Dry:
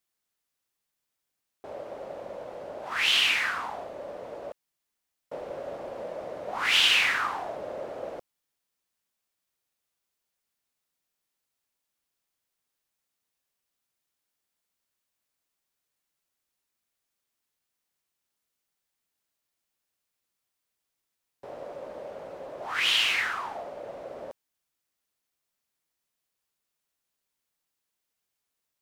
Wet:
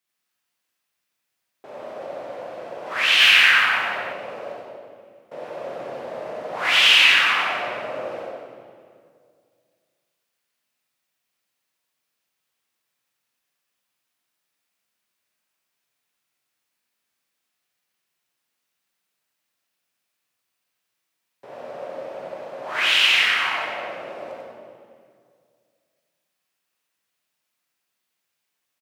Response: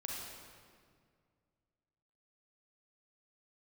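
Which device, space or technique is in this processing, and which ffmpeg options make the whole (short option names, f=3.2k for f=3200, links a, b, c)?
PA in a hall: -filter_complex "[0:a]highpass=f=110:w=0.5412,highpass=f=110:w=1.3066,equalizer=f=2.3k:t=o:w=1.6:g=5,aecho=1:1:92:0.562[a];[1:a]atrim=start_sample=2205[b];[a][b]afir=irnorm=-1:irlink=0,asettb=1/sr,asplit=3[c][d][e];[c]atrim=end=3.204[f];[d]atrim=start=3.2:end=4.13,asetpts=PTS-STARTPTS,afade=t=in:d=0.004:c=qsin,afade=t=out:st=0.926:d=0.004:c=qsin,equalizer=f=100:t=o:w=0.67:g=5,equalizer=f=1.6k:t=o:w=0.67:g=7,equalizer=f=16k:t=o:w=0.67:g=7[g];[e]atrim=start=4.126[h];[f][g]acrossfade=d=0.004:c1=hsin:c2=qsin[i];[i][h]acrossfade=d=0.004:c1=qsin:c2=hsin,volume=3dB"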